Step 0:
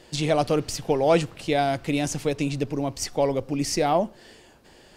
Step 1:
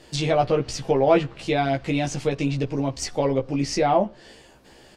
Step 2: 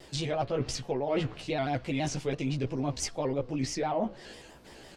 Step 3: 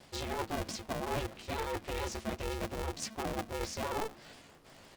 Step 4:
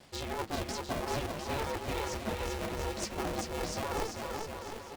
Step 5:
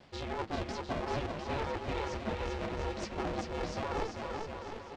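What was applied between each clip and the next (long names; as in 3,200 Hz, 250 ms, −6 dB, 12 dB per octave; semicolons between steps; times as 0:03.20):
double-tracking delay 15 ms −3 dB; treble cut that deepens with the level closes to 2,900 Hz, closed at −17 dBFS
reversed playback; downward compressor 5 to 1, threshold −28 dBFS, peak gain reduction 14.5 dB; reversed playback; pitch modulation by a square or saw wave square 6 Hz, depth 100 cents
ring modulator with a square carrier 220 Hz; level −6 dB
bouncing-ball delay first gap 390 ms, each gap 0.8×, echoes 5
high-frequency loss of the air 140 metres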